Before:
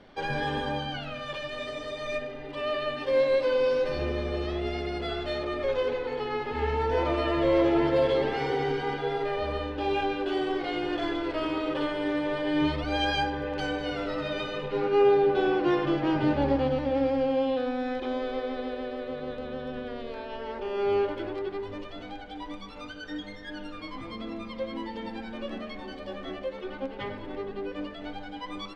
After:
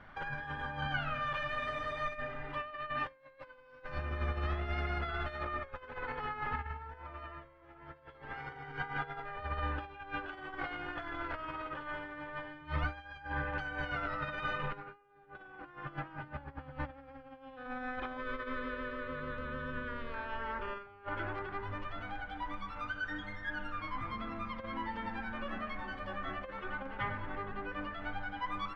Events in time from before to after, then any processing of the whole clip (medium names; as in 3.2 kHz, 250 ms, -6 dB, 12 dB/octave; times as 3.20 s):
18.17–20.87 s: Butterworth band-stop 750 Hz, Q 3.5
whole clip: bass shelf 340 Hz -10 dB; compressor with a negative ratio -36 dBFS, ratio -0.5; FFT filter 110 Hz 0 dB, 420 Hz -21 dB, 1.4 kHz -4 dB, 4.2 kHz -24 dB; trim +8 dB